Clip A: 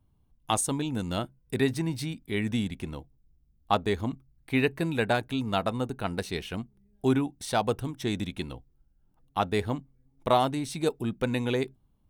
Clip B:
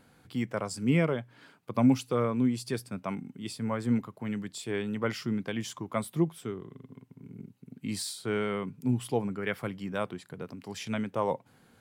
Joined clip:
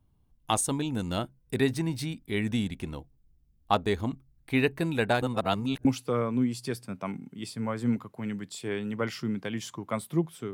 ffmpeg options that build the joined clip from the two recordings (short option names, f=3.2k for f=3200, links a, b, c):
-filter_complex "[0:a]apad=whole_dur=10.53,atrim=end=10.53,asplit=2[a][b];[a]atrim=end=5.222[c];[b]atrim=start=5.218:end=5.852,asetpts=PTS-STARTPTS,areverse[d];[1:a]atrim=start=1.878:end=6.56[e];[c][d]acrossfade=d=0.004:c1=hsin:c2=hsin[f];[f][e]acrossfade=d=0.004:c1=hsin:c2=hsin"